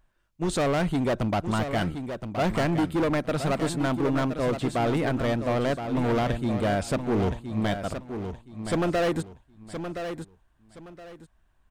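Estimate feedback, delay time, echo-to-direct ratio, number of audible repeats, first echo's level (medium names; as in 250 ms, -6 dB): 26%, 1020 ms, -8.0 dB, 3, -8.5 dB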